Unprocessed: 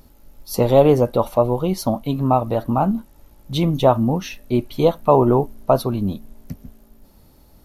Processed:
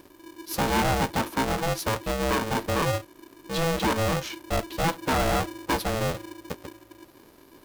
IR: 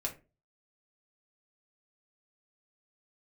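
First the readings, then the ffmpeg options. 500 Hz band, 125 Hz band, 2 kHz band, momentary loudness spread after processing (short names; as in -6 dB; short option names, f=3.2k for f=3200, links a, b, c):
-11.0 dB, -9.0 dB, +9.5 dB, 12 LU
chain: -af "aeval=exprs='(tanh(7.94*val(0)+0.25)-tanh(0.25))/7.94':c=same,aeval=exprs='val(0)*sgn(sin(2*PI*330*n/s))':c=same,volume=-2.5dB"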